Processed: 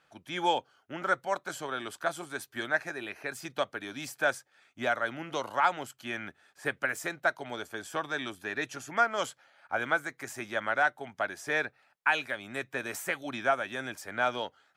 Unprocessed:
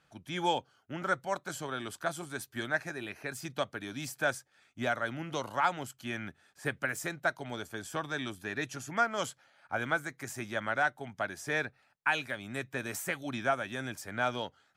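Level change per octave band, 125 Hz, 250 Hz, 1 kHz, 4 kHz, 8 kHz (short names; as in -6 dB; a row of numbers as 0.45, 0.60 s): -6.0, -1.0, +3.0, +1.5, -0.5 dB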